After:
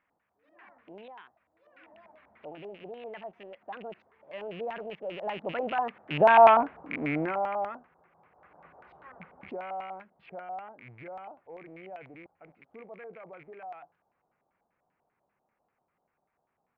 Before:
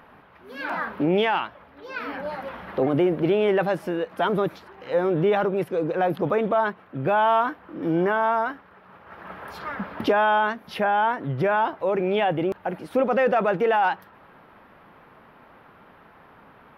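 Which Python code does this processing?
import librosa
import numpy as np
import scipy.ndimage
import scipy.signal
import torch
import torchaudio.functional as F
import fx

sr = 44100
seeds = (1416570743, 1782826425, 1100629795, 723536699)

y = fx.rattle_buzz(x, sr, strikes_db=-37.0, level_db=-21.0)
y = fx.doppler_pass(y, sr, speed_mps=42, closest_m=9.7, pass_at_s=6.46)
y = fx.filter_lfo_lowpass(y, sr, shape='square', hz=5.1, low_hz=740.0, high_hz=2300.0, q=2.8)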